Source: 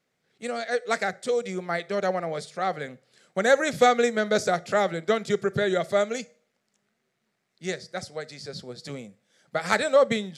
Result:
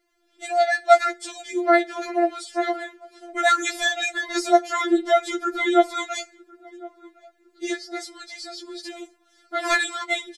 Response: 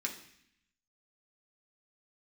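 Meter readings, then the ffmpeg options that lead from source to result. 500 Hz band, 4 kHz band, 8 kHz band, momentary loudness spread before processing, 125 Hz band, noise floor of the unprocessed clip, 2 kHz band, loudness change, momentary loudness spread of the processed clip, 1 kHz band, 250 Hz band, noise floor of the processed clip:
+0.5 dB, +5.0 dB, +4.0 dB, 17 LU, below −30 dB, −77 dBFS, +4.0 dB, +3.0 dB, 18 LU, +5.5 dB, +5.0 dB, −64 dBFS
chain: -filter_complex "[0:a]lowshelf=frequency=370:gain=9.5,asplit=2[link_01][link_02];[link_02]adelay=1059,lowpass=frequency=850:poles=1,volume=-20dB,asplit=2[link_03][link_04];[link_04]adelay=1059,lowpass=frequency=850:poles=1,volume=0.46,asplit=2[link_05][link_06];[link_06]adelay=1059,lowpass=frequency=850:poles=1,volume=0.46[link_07];[link_01][link_03][link_05][link_07]amix=inputs=4:normalize=0,afftfilt=real='re*4*eq(mod(b,16),0)':imag='im*4*eq(mod(b,16),0)':win_size=2048:overlap=0.75,volume=6.5dB"

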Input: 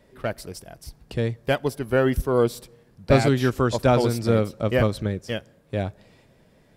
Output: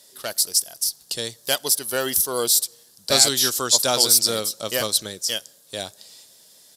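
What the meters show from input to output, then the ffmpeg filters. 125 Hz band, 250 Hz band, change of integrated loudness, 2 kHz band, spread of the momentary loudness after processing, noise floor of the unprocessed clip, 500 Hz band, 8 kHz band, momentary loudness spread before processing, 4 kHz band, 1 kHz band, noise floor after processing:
−16.0 dB, −10.0 dB, +4.0 dB, −0.5 dB, 16 LU, −58 dBFS, −5.0 dB, +23.0 dB, 13 LU, +16.0 dB, −2.0 dB, −54 dBFS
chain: -af "aexciter=amount=6.6:drive=8.4:freq=3500,highpass=frequency=890:poles=1,aresample=32000,aresample=44100,volume=1dB"

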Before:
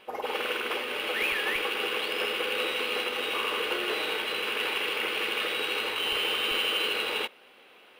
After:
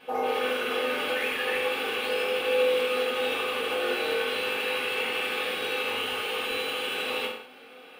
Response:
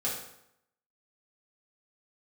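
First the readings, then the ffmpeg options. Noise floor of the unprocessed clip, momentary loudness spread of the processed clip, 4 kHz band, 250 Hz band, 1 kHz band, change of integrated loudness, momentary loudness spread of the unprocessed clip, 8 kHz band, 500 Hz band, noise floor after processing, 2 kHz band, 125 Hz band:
−55 dBFS, 4 LU, −2.5 dB, +2.0 dB, +2.0 dB, +0.5 dB, 4 LU, 0.0 dB, +6.0 dB, −48 dBFS, 0.0 dB, can't be measured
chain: -filter_complex "[0:a]acompressor=threshold=-31dB:ratio=6,equalizer=frequency=270:width=4.9:gain=6[link_01];[1:a]atrim=start_sample=2205,afade=type=out:start_time=0.26:duration=0.01,atrim=end_sample=11907[link_02];[link_01][link_02]afir=irnorm=-1:irlink=0"

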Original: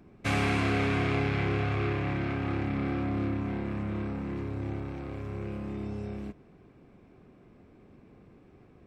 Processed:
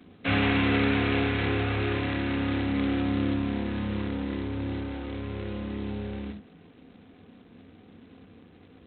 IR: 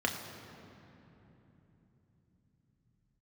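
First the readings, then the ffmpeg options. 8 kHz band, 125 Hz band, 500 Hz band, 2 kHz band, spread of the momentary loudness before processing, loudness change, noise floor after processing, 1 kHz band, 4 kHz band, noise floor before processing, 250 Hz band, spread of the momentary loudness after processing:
can't be measured, 0.0 dB, +2.0 dB, +3.5 dB, 10 LU, +3.0 dB, −54 dBFS, +1.0 dB, +7.0 dB, −57 dBFS, +4.5 dB, 11 LU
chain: -filter_complex "[1:a]atrim=start_sample=2205,atrim=end_sample=4410[link_01];[0:a][link_01]afir=irnorm=-1:irlink=0,volume=-4dB" -ar 8000 -c:a adpcm_g726 -b:a 16k

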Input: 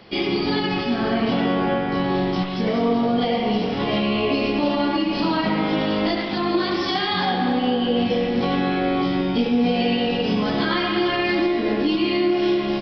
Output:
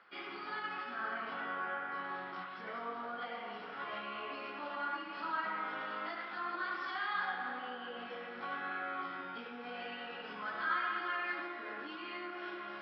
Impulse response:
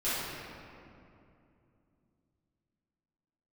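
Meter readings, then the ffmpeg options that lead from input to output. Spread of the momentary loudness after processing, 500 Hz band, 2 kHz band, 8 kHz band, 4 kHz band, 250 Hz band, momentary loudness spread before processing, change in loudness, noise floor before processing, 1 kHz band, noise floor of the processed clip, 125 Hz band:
8 LU, −24.5 dB, −10.5 dB, can't be measured, −22.5 dB, −30.5 dB, 2 LU, −18.5 dB, −25 dBFS, −13.0 dB, −46 dBFS, below −30 dB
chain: -af "areverse,acompressor=mode=upward:threshold=-24dB:ratio=2.5,areverse,bandpass=frequency=1400:width_type=q:width=4.9:csg=0,flanger=delay=9.3:depth=6.9:regen=-66:speed=0.9:shape=sinusoidal,volume=1.5dB"

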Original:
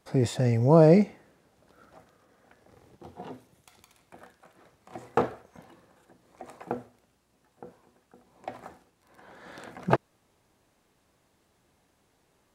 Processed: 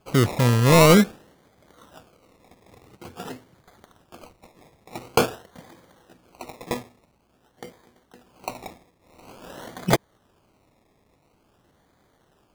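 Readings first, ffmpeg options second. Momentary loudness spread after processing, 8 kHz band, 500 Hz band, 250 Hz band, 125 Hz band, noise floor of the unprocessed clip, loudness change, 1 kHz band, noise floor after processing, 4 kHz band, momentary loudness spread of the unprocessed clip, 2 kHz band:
24 LU, +16.5 dB, +2.5 dB, +4.0 dB, +4.5 dB, −70 dBFS, +4.0 dB, +6.0 dB, −65 dBFS, +16.5 dB, 25 LU, +12.0 dB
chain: -af "acrusher=samples=23:mix=1:aa=0.000001:lfo=1:lforange=13.8:lforate=0.48,volume=13.5dB,asoftclip=hard,volume=-13.5dB,volume=5.5dB"

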